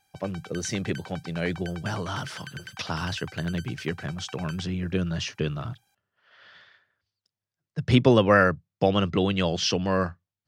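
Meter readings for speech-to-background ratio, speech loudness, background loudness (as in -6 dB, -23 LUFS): 17.5 dB, -26.5 LUFS, -44.0 LUFS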